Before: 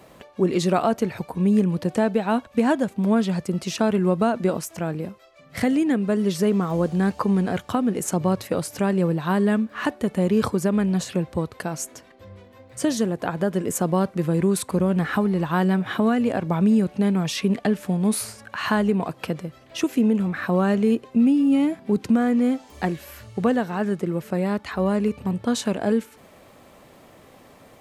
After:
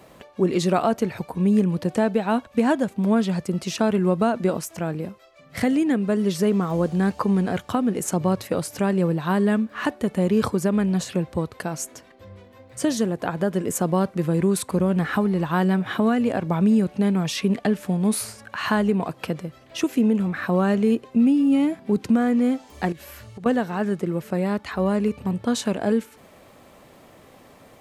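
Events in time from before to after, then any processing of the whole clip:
22.92–23.46 s: compression, threshold -35 dBFS

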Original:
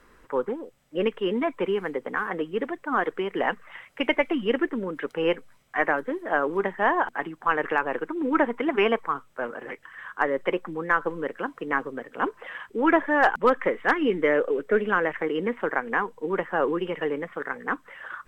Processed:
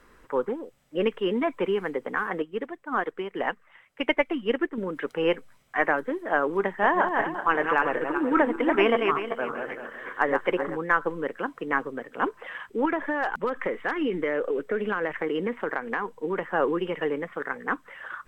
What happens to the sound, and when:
2.42–4.78 s: upward expansion, over -40 dBFS
6.64–10.77 s: backward echo that repeats 192 ms, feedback 45%, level -4.5 dB
12.85–16.54 s: compression, threshold -22 dBFS

